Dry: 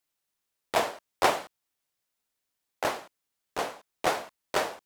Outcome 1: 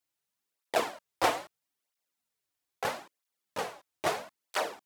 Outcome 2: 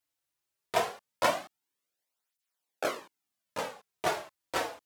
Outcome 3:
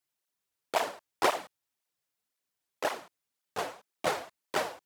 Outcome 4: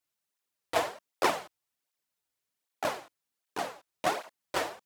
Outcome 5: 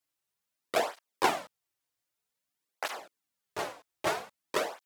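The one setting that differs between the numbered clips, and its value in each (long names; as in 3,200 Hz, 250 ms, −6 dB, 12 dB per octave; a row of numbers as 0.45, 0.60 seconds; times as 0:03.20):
through-zero flanger with one copy inverted, nulls at: 0.77, 0.21, 1.9, 1.3, 0.52 Hertz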